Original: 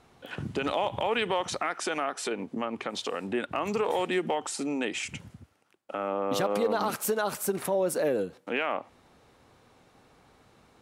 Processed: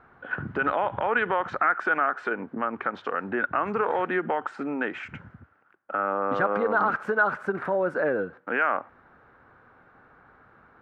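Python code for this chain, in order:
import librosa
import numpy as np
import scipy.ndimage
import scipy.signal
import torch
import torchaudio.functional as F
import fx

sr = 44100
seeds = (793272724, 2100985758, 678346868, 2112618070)

y = fx.lowpass_res(x, sr, hz=1500.0, q=4.9)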